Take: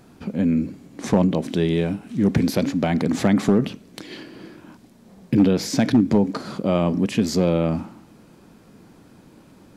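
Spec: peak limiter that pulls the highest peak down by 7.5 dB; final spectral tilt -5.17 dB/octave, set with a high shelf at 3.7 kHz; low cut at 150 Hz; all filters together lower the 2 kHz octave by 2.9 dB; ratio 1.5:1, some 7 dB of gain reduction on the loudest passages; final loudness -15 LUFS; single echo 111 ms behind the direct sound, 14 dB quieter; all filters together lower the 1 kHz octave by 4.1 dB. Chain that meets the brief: high-pass 150 Hz; peaking EQ 1 kHz -5.5 dB; peaking EQ 2 kHz -4 dB; treble shelf 3.7 kHz +6.5 dB; compression 1.5:1, threshold -33 dBFS; peak limiter -19.5 dBFS; delay 111 ms -14 dB; trim +15 dB

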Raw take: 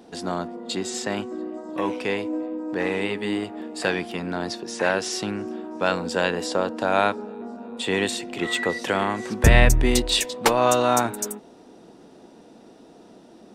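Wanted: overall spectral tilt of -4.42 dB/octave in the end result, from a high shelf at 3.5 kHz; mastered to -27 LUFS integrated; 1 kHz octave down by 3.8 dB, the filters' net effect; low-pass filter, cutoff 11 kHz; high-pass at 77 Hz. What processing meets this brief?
high-pass 77 Hz; low-pass 11 kHz; peaking EQ 1 kHz -5 dB; treble shelf 3.5 kHz -3.5 dB; trim -1 dB

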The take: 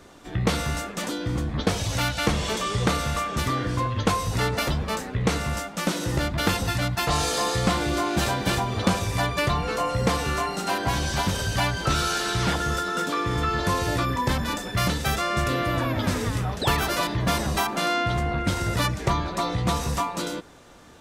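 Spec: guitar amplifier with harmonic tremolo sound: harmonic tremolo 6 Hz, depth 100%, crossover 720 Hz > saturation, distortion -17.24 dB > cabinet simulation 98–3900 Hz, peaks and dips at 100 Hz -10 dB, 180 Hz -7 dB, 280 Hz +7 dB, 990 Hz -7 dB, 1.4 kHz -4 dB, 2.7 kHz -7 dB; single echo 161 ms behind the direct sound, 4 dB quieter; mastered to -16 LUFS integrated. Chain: delay 161 ms -4 dB; harmonic tremolo 6 Hz, depth 100%, crossover 720 Hz; saturation -20 dBFS; cabinet simulation 98–3900 Hz, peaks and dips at 100 Hz -10 dB, 180 Hz -7 dB, 280 Hz +7 dB, 990 Hz -7 dB, 1.4 kHz -4 dB, 2.7 kHz -7 dB; trim +16 dB

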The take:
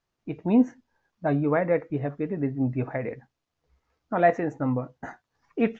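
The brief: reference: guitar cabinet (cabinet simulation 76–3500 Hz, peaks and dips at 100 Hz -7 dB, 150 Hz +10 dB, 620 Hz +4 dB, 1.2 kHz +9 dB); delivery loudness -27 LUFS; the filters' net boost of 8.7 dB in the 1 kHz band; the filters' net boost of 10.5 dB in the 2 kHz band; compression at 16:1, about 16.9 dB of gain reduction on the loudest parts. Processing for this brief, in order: peaking EQ 1 kHz +7 dB; peaking EQ 2 kHz +9 dB; compression 16:1, threshold -26 dBFS; cabinet simulation 76–3500 Hz, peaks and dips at 100 Hz -7 dB, 150 Hz +10 dB, 620 Hz +4 dB, 1.2 kHz +9 dB; trim +3.5 dB

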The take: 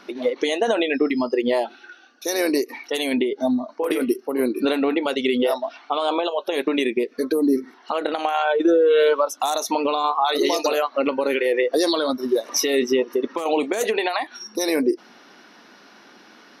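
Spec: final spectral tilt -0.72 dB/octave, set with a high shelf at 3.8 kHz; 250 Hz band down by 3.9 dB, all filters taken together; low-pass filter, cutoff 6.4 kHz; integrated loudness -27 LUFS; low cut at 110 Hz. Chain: high-pass 110 Hz; low-pass 6.4 kHz; peaking EQ 250 Hz -5 dB; treble shelf 3.8 kHz -6.5 dB; trim -3 dB

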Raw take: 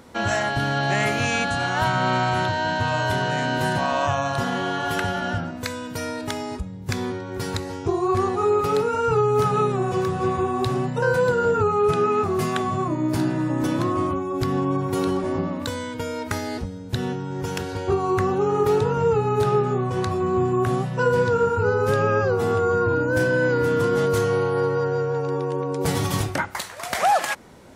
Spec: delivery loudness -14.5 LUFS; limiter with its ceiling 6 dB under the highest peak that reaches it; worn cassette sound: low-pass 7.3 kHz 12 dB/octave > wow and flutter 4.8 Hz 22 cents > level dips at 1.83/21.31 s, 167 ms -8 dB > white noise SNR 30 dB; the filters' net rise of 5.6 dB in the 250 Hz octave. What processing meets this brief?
peaking EQ 250 Hz +7.5 dB; peak limiter -13.5 dBFS; low-pass 7.3 kHz 12 dB/octave; wow and flutter 4.8 Hz 22 cents; level dips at 1.83/21.31 s, 167 ms -8 dB; white noise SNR 30 dB; trim +8 dB

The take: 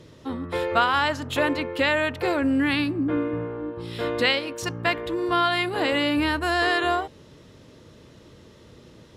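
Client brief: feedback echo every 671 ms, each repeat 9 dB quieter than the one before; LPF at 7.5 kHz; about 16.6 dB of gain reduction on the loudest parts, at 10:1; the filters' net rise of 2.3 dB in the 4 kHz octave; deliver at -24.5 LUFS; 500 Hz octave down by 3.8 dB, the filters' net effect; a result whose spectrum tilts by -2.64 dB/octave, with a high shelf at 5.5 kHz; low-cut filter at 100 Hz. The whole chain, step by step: high-pass 100 Hz; low-pass 7.5 kHz; peaking EQ 500 Hz -5 dB; peaking EQ 4 kHz +6 dB; treble shelf 5.5 kHz -7 dB; compression 10:1, threshold -33 dBFS; feedback delay 671 ms, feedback 35%, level -9 dB; trim +11.5 dB

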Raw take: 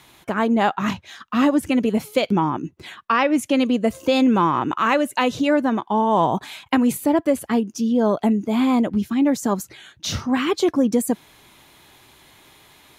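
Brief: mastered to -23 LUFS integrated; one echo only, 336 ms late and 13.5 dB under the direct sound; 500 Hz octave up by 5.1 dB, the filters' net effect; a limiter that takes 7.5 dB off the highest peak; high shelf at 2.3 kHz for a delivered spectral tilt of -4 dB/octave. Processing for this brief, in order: peaking EQ 500 Hz +6.5 dB; treble shelf 2.3 kHz -8 dB; peak limiter -9 dBFS; delay 336 ms -13.5 dB; trim -3.5 dB

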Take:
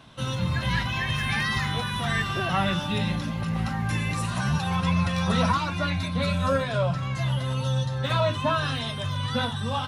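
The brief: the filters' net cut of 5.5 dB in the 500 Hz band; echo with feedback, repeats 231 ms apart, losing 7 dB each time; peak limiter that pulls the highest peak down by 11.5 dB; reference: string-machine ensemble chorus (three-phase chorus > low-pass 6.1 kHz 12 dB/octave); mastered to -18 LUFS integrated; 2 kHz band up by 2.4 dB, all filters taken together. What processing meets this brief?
peaking EQ 500 Hz -7 dB; peaking EQ 2 kHz +3.5 dB; peak limiter -23.5 dBFS; feedback delay 231 ms, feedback 45%, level -7 dB; three-phase chorus; low-pass 6.1 kHz 12 dB/octave; trim +16 dB

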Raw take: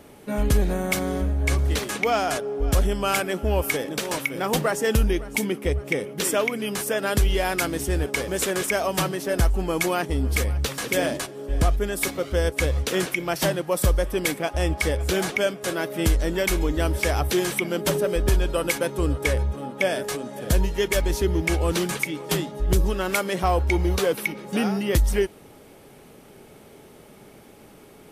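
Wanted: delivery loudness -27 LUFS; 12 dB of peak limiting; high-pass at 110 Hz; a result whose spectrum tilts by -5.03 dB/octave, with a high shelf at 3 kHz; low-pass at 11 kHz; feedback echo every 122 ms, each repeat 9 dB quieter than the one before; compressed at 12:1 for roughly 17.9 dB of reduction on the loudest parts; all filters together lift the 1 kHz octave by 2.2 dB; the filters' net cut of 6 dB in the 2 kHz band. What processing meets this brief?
high-pass 110 Hz; low-pass 11 kHz; peaking EQ 1 kHz +5.5 dB; peaking EQ 2 kHz -7.5 dB; treble shelf 3 kHz -4 dB; compression 12:1, threshold -36 dBFS; peak limiter -36 dBFS; feedback delay 122 ms, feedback 35%, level -9 dB; trim +17.5 dB

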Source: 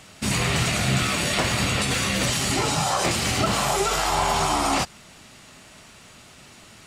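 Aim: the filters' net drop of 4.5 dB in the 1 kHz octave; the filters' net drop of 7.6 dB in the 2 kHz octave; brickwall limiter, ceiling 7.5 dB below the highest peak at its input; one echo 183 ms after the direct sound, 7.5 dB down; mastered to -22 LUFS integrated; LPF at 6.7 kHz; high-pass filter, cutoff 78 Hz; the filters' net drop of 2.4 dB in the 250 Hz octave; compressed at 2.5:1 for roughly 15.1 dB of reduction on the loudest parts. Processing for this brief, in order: high-pass 78 Hz; low-pass 6.7 kHz; peaking EQ 250 Hz -3 dB; peaking EQ 1 kHz -3.5 dB; peaking EQ 2 kHz -9 dB; compression 2.5:1, threshold -45 dBFS; peak limiter -35.5 dBFS; delay 183 ms -7.5 dB; trim +22 dB

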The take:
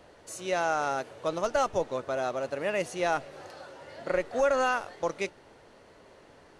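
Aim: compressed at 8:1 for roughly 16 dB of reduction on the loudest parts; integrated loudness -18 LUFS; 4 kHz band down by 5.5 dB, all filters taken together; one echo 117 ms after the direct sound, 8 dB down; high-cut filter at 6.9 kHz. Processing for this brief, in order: low-pass 6.9 kHz; peaking EQ 4 kHz -7.5 dB; compression 8:1, threshold -39 dBFS; delay 117 ms -8 dB; trim +25 dB

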